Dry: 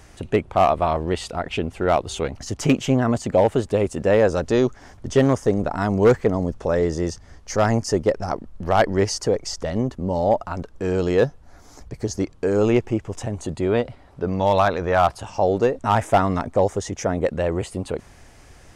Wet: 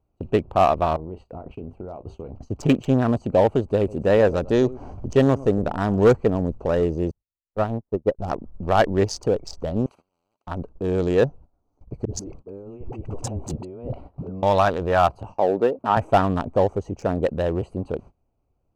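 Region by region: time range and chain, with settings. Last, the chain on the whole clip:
0.96–2.43 s: treble shelf 2.5 kHz -7.5 dB + compression 16:1, threshold -29 dBFS + doubling 32 ms -11.5 dB
3.78–6.06 s: upward compressor, threshold -24 dBFS + delay 102 ms -17.5 dB
7.11–8.19 s: inverse Chebyshev low-pass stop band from 6.1 kHz, stop band 60 dB + upward expansion 2.5:1, over -38 dBFS
9.86–10.47 s: high-pass 1.4 kHz + transient shaper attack -10 dB, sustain +1 dB + spectrum-flattening compressor 10:1
12.05–14.43 s: compressor with a negative ratio -32 dBFS + phase dispersion highs, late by 60 ms, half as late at 340 Hz
15.38–15.97 s: band-pass 210–2600 Hz + short-mantissa float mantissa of 8-bit
whole clip: local Wiener filter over 25 samples; band-stop 2.1 kHz, Q 11; gate -39 dBFS, range -23 dB

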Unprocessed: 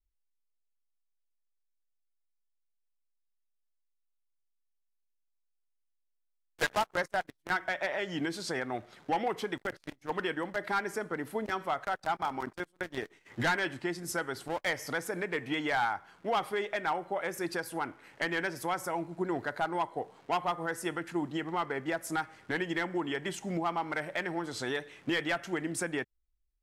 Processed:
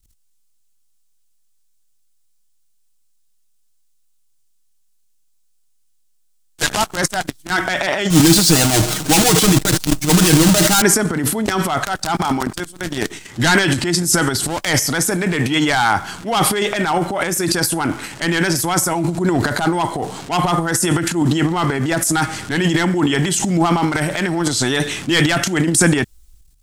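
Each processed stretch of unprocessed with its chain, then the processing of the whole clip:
8.10–10.82 s: square wave that keeps the level + comb 6.4 ms, depth 96%
whole clip: graphic EQ 500/1000/2000/8000 Hz -10/-5/-7/+6 dB; transient shaper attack -6 dB, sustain +12 dB; loudness maximiser +21.5 dB; trim -1 dB

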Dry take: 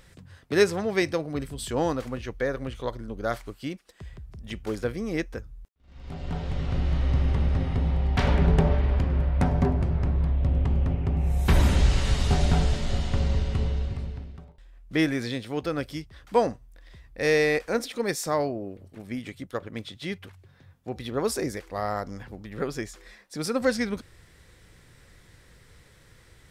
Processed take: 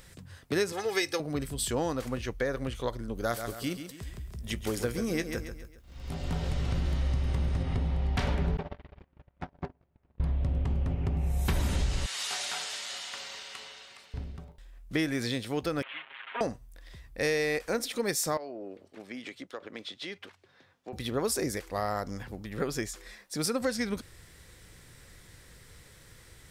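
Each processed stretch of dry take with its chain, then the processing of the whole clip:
0.72–1.20 s: high-pass 170 Hz 6 dB/octave + tilt shelf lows -4.5 dB, about 1.2 kHz + comb 2.4 ms, depth 70%
3.15–7.63 s: treble shelf 7 kHz +8.5 dB + doubling 17 ms -13 dB + feedback delay 136 ms, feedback 41%, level -10 dB
8.57–10.20 s: low-pass 4 kHz + gate -19 dBFS, range -40 dB + bass shelf 290 Hz -11.5 dB
12.06–14.14 s: high-pass 1.3 kHz + transformer saturation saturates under 790 Hz
15.82–16.41 s: one-bit delta coder 16 kbps, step -34 dBFS + high-pass 1.3 kHz + comb 7.4 ms, depth 99%
18.37–20.93 s: three-band isolator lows -21 dB, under 250 Hz, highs -17 dB, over 6.4 kHz + compression 4:1, threshold -36 dBFS
whole clip: treble shelf 5.4 kHz +8 dB; compression 4:1, threshold -26 dBFS

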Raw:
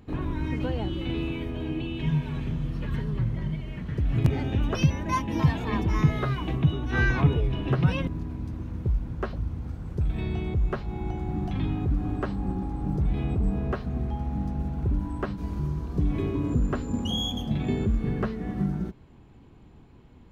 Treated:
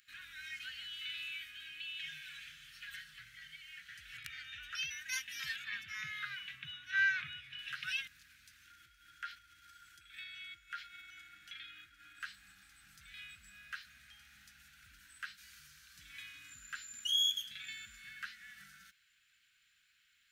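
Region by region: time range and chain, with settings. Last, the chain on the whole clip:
4.17–4.91 s: treble shelf 4 kHz -10.5 dB + comb 2.2 ms, depth 47%
5.56–7.59 s: high-pass 83 Hz 24 dB/octave + tone controls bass +6 dB, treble -10 dB
8.65–12.20 s: dynamic bell 2.1 kHz, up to +5 dB, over -57 dBFS, Q 2 + compression 5:1, threshold -30 dBFS + small resonant body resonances 330/1400/3300 Hz, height 17 dB, ringing for 95 ms
whole clip: elliptic high-pass 1.5 kHz, stop band 40 dB; treble shelf 4.7 kHz +10 dB; trim -2.5 dB

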